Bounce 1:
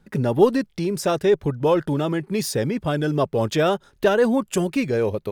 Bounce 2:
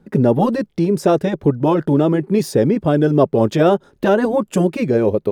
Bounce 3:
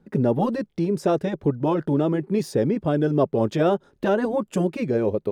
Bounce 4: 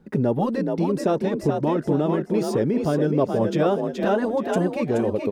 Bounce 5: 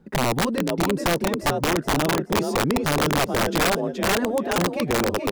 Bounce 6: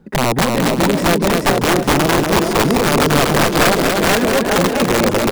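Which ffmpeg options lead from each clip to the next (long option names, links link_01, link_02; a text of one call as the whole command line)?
ffmpeg -i in.wav -af "equalizer=frequency=320:width=0.36:gain=13.5,afftfilt=real='re*lt(hypot(re,im),3.98)':imag='im*lt(hypot(re,im),3.98)':win_size=1024:overlap=0.75,volume=-3dB" out.wav
ffmpeg -i in.wav -af "highshelf=frequency=11000:gain=-6.5,volume=-6.5dB" out.wav
ffmpeg -i in.wav -filter_complex "[0:a]asplit=6[link_01][link_02][link_03][link_04][link_05][link_06];[link_02]adelay=425,afreqshift=44,volume=-5.5dB[link_07];[link_03]adelay=850,afreqshift=88,volume=-13.7dB[link_08];[link_04]adelay=1275,afreqshift=132,volume=-21.9dB[link_09];[link_05]adelay=1700,afreqshift=176,volume=-30dB[link_10];[link_06]adelay=2125,afreqshift=220,volume=-38.2dB[link_11];[link_01][link_07][link_08][link_09][link_10][link_11]amix=inputs=6:normalize=0,asplit=2[link_12][link_13];[link_13]acompressor=threshold=-29dB:ratio=6,volume=2.5dB[link_14];[link_12][link_14]amix=inputs=2:normalize=0,volume=-3.5dB" out.wav
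ffmpeg -i in.wav -af "aeval=exprs='(mod(5.31*val(0)+1,2)-1)/5.31':channel_layout=same" out.wav
ffmpeg -i in.wav -af "aecho=1:1:240|420|555|656.2|732.2:0.631|0.398|0.251|0.158|0.1,volume=6dB" out.wav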